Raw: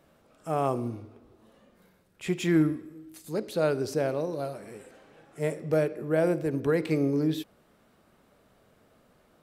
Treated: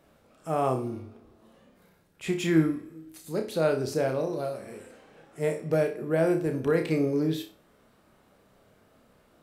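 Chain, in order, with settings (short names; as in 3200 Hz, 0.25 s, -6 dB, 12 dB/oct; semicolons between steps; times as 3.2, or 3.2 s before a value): flutter echo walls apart 5.3 m, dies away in 0.3 s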